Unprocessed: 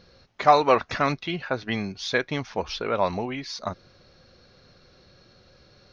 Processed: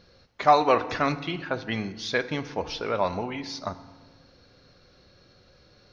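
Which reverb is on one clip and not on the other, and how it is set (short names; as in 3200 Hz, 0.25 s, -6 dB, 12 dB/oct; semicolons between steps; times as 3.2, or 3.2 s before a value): FDN reverb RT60 1.3 s, low-frequency decay 1.45×, high-frequency decay 0.65×, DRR 11.5 dB; gain -2 dB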